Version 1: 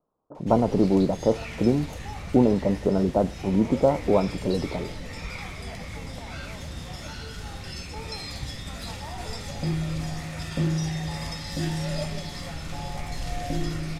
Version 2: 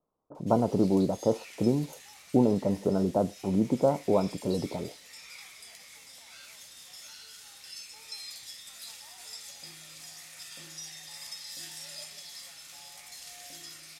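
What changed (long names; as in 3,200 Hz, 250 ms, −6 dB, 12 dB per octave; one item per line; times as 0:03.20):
speech −4.0 dB
background: add first difference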